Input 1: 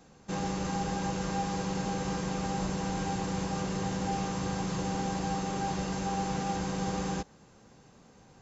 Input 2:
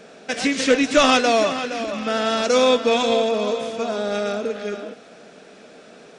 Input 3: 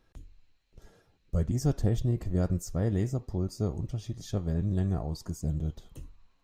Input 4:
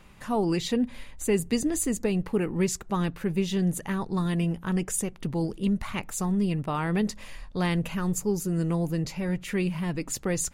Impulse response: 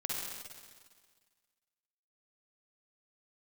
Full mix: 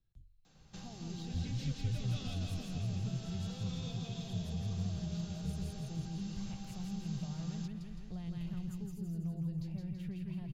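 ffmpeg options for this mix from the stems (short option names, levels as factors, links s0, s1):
-filter_complex "[0:a]highpass=f=670:p=1,acompressor=threshold=0.00631:ratio=2.5,adelay=450,volume=0.944[s0];[1:a]lowpass=5900,adelay=1000,volume=0.126,asplit=2[s1][s2];[s2]volume=0.531[s3];[2:a]volume=0.141[s4];[3:a]equalizer=f=8400:w=0.54:g=-7,adelay=550,volume=0.188,asplit=2[s5][s6];[s6]volume=0.668[s7];[s1][s5]amix=inputs=2:normalize=0,equalizer=f=680:t=o:w=0.81:g=12,acompressor=threshold=0.0126:ratio=6,volume=1[s8];[s3][s7]amix=inputs=2:normalize=0,aecho=0:1:165|330|495|660|825|990|1155|1320:1|0.53|0.281|0.149|0.0789|0.0418|0.0222|0.0117[s9];[s0][s4][s8][s9]amix=inputs=4:normalize=0,equalizer=f=125:t=o:w=1:g=6,equalizer=f=250:t=o:w=1:g=-6,equalizer=f=500:t=o:w=1:g=-7,equalizer=f=1000:t=o:w=1:g=-8,equalizer=f=2000:t=o:w=1:g=-7,equalizer=f=4000:t=o:w=1:g=4,equalizer=f=8000:t=o:w=1:g=-5,acrossover=split=230|3000[s10][s11][s12];[s11]acompressor=threshold=0.00112:ratio=2[s13];[s10][s13][s12]amix=inputs=3:normalize=0,bass=f=250:g=6,treble=f=4000:g=-4"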